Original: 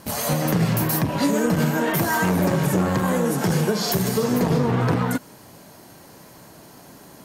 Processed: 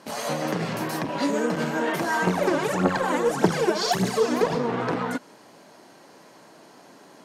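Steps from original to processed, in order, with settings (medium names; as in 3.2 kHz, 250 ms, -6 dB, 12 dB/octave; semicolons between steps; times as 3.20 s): high-pass 270 Hz 12 dB/octave; 2.27–4.55 s: phaser 1.7 Hz, delay 3.5 ms, feedback 74%; distance through air 66 m; trim -1.5 dB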